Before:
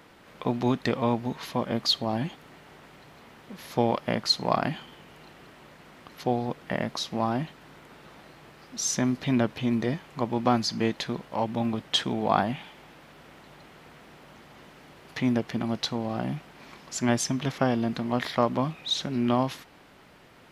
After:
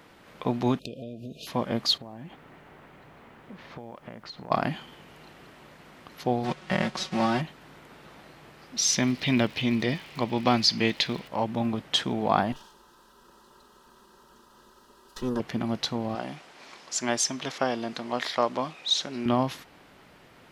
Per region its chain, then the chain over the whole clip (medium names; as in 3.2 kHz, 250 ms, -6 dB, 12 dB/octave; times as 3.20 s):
0.79–1.47 s: compression 5:1, threshold -34 dBFS + brick-wall FIR band-stop 700–2400 Hz
1.97–4.50 s: low-pass 2.5 kHz + compression, threshold -38 dBFS + added noise pink -70 dBFS
6.43–7.40 s: formants flattened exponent 0.6 + distance through air 84 m + comb 5.4 ms, depth 94%
8.76–11.27 s: high-order bell 3.3 kHz +8.5 dB + crackle 89 per s -38 dBFS
12.52–15.40 s: comb filter that takes the minimum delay 3.1 ms + static phaser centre 440 Hz, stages 8
16.15–19.26 s: low-pass 7.7 kHz + tone controls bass -14 dB, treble +7 dB
whole clip: none